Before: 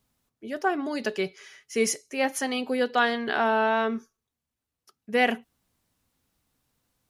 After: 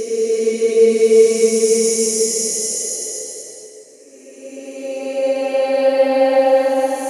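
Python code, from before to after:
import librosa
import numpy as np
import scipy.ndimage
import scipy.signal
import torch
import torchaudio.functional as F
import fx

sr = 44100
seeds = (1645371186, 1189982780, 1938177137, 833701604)

y = fx.graphic_eq_10(x, sr, hz=(500, 1000, 2000, 8000), db=(12, 3, -6, 10))
y = fx.paulstretch(y, sr, seeds[0], factor=12.0, window_s=0.25, from_s=1.71)
y = F.gain(torch.from_numpy(y), 1.0).numpy()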